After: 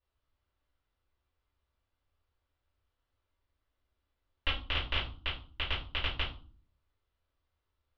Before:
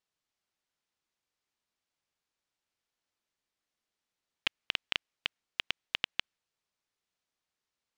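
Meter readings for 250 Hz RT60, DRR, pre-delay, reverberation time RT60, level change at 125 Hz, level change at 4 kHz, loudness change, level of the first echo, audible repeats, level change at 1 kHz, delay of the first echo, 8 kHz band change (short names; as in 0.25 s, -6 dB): 0.70 s, -11.5 dB, 3 ms, 0.40 s, +19.5 dB, +0.5 dB, +1.0 dB, none, none, +6.0 dB, none, under -10 dB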